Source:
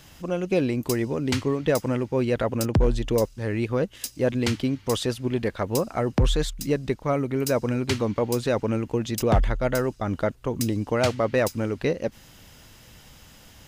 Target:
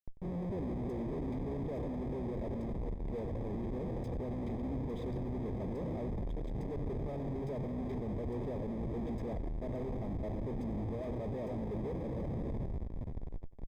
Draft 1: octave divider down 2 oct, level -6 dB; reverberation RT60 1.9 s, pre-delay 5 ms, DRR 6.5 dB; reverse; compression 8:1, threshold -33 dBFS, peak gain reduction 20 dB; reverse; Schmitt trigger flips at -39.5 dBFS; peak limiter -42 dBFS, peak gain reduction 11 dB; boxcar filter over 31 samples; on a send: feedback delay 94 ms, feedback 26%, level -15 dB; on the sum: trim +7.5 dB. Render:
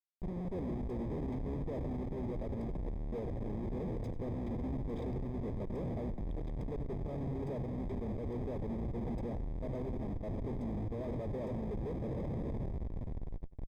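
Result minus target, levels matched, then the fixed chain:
compression: peak gain reduction +5.5 dB
octave divider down 2 oct, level -6 dB; reverberation RT60 1.9 s, pre-delay 5 ms, DRR 6.5 dB; reverse; compression 8:1, threshold -26.5 dBFS, peak gain reduction 14 dB; reverse; Schmitt trigger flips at -39.5 dBFS; peak limiter -42 dBFS, peak gain reduction 30.5 dB; boxcar filter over 31 samples; on a send: feedback delay 94 ms, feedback 26%, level -15 dB; on the sum: trim +7.5 dB

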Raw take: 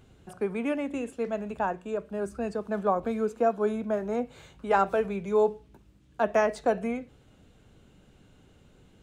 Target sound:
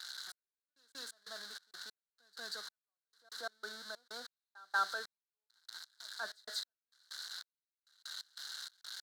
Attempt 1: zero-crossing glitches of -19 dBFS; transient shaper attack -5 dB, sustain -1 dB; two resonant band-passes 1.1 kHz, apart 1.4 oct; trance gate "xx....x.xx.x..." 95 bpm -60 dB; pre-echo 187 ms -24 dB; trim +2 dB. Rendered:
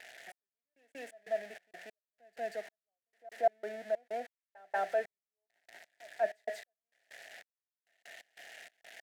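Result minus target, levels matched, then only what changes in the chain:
2 kHz band -9.0 dB
change: two resonant band-passes 2.5 kHz, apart 1.4 oct

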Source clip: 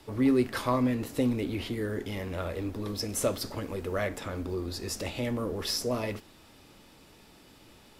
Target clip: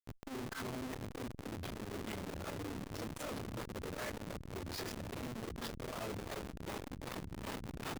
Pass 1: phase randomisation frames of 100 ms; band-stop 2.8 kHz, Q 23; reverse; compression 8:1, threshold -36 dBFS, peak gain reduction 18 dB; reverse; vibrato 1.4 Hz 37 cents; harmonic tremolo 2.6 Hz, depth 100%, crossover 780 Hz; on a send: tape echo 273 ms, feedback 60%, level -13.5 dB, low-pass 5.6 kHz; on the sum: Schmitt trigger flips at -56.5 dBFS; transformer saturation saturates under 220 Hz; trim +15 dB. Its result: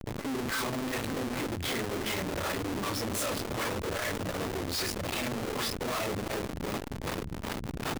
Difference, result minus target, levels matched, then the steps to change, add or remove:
compression: peak gain reduction -9 dB
change: compression 8:1, threshold -46.5 dBFS, peak gain reduction 27 dB

